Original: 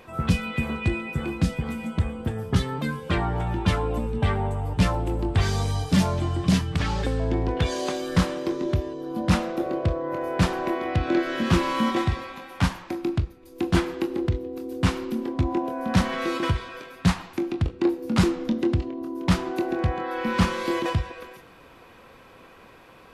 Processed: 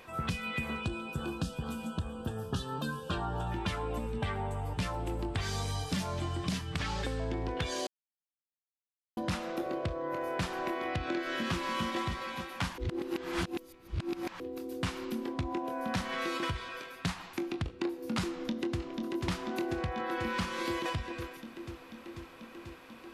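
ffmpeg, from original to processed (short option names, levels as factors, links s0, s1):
-filter_complex "[0:a]asettb=1/sr,asplit=3[s0][s1][s2];[s0]atrim=end=0.814[s3];[s1]atrim=start=0.81:end=3.52,asetpts=PTS-STARTPTS,afade=t=in:d=0.004:c=qsin,afade=t=out:st=2.706:d=0.004:c=qsin,asuperstop=centerf=2100:order=4:qfactor=2.1[s4];[s2]atrim=start=3.516[s5];[s3][s4]acrossfade=d=0.004:c1=hsin:c2=qsin[s6];[s6][s5]acrossfade=d=0.004:c1=qsin:c2=hsin,asplit=2[s7][s8];[s8]afade=t=in:st=11.36:d=0.01,afade=t=out:st=11.83:d=0.01,aecho=0:1:290|580|870|1160|1450|1740:0.421697|0.210848|0.105424|0.0527121|0.026356|0.013178[s9];[s7][s9]amix=inputs=2:normalize=0,asplit=2[s10][s11];[s11]afade=t=in:st=18.24:d=0.01,afade=t=out:st=18.83:d=0.01,aecho=0:1:490|980|1470|1960|2450|2940|3430|3920|4410|4900|5390|5880:0.530884|0.424708|0.339766|0.271813|0.21745|0.17396|0.139168|0.111335|0.0890676|0.0712541|0.0570033|0.0456026[s12];[s10][s12]amix=inputs=2:normalize=0,asplit=5[s13][s14][s15][s16][s17];[s13]atrim=end=7.87,asetpts=PTS-STARTPTS,afade=t=out:st=7.866:d=0.004:c=hsin[s18];[s14]atrim=start=7.87:end=9.17,asetpts=PTS-STARTPTS,volume=0[s19];[s15]atrim=start=9.17:end=12.782,asetpts=PTS-STARTPTS,afade=t=in:d=0.004:c=hsin[s20];[s16]atrim=start=12.778:end=14.402,asetpts=PTS-STARTPTS,areverse[s21];[s17]atrim=start=14.398[s22];[s18][s19][s20]concat=n=3:v=0:a=1[s23];[s23][s21]acrossfade=d=0.004:c1=hsin:c2=hsin[s24];[s24][s22]acrossfade=d=0.004:c1=hsin:c2=hsin,tiltshelf=f=840:g=-3.5,acompressor=threshold=0.0501:ratio=6,volume=0.631"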